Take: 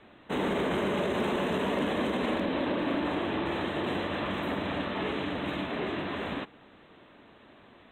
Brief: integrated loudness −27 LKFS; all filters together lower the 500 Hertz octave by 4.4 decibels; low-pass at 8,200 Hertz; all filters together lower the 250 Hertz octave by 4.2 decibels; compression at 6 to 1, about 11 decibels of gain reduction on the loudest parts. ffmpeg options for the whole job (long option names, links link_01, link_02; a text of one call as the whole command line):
ffmpeg -i in.wav -af "lowpass=8200,equalizer=frequency=250:width_type=o:gain=-4,equalizer=frequency=500:width_type=o:gain=-4.5,acompressor=threshold=-41dB:ratio=6,volume=16.5dB" out.wav